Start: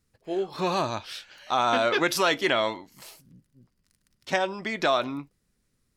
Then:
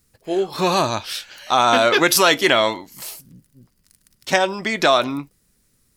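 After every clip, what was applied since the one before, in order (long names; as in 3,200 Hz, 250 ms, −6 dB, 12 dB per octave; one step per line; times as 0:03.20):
high-shelf EQ 7,000 Hz +11.5 dB
level +7.5 dB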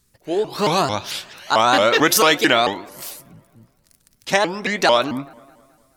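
delay with a low-pass on its return 107 ms, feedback 68%, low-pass 1,900 Hz, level −23 dB
pitch modulation by a square or saw wave saw up 4.5 Hz, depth 250 cents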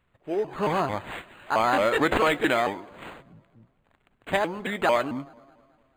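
linearly interpolated sample-rate reduction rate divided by 8×
level −6 dB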